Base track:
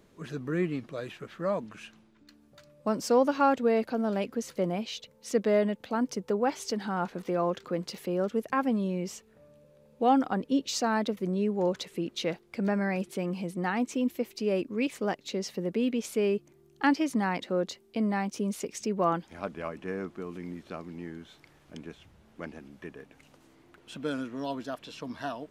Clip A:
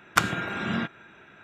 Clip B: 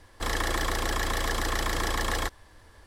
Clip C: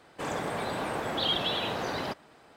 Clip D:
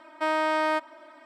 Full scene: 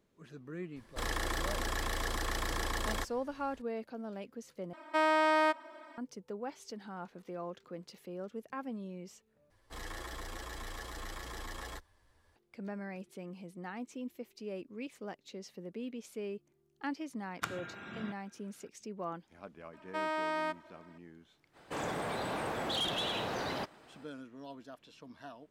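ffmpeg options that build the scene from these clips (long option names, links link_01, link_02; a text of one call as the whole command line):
ffmpeg -i bed.wav -i cue0.wav -i cue1.wav -i cue2.wav -i cue3.wav -filter_complex "[2:a]asplit=2[link_01][link_02];[4:a]asplit=2[link_03][link_04];[0:a]volume=-13.5dB[link_05];[link_02]asplit=2[link_06][link_07];[link_07]adelay=9.6,afreqshift=2.5[link_08];[link_06][link_08]amix=inputs=2:normalize=1[link_09];[3:a]asoftclip=type=tanh:threshold=-26dB[link_10];[link_05]asplit=3[link_11][link_12][link_13];[link_11]atrim=end=4.734[link_14];[link_03]atrim=end=1.25,asetpts=PTS-STARTPTS,volume=-2.5dB[link_15];[link_12]atrim=start=5.976:end=9.504[link_16];[link_09]atrim=end=2.86,asetpts=PTS-STARTPTS,volume=-12.5dB[link_17];[link_13]atrim=start=12.356[link_18];[link_01]atrim=end=2.86,asetpts=PTS-STARTPTS,volume=-7dB,afade=type=in:duration=0.004:curve=hsin,afade=type=out:start_time=2.856:duration=0.004:curve=hsin,adelay=760[link_19];[1:a]atrim=end=1.43,asetpts=PTS-STARTPTS,volume=-16dB,afade=type=in:duration=0.004:curve=hsin,afade=type=out:start_time=1.426:duration=0.004:curve=hsin,adelay=17260[link_20];[link_04]atrim=end=1.25,asetpts=PTS-STARTPTS,volume=-9.5dB,afade=type=in:duration=0.004:curve=hsin,afade=type=out:start_time=1.246:duration=0.004:curve=hsin,adelay=19730[link_21];[link_10]atrim=end=2.56,asetpts=PTS-STARTPTS,volume=-2.5dB,afade=type=in:duration=0.05,afade=type=out:start_time=2.51:duration=0.05,adelay=21520[link_22];[link_14][link_15]acrossfade=duration=0.004:curve1=hsin:curve2=hsin[link_23];[link_23][link_16]acrossfade=duration=0.004:curve1=hsin:curve2=hsin[link_24];[link_24][link_17]acrossfade=duration=0.004:curve1=hsin:curve2=hsin[link_25];[link_25][link_18]acrossfade=duration=0.004:curve1=hsin:curve2=hsin[link_26];[link_26][link_19][link_20][link_21][link_22]amix=inputs=5:normalize=0" out.wav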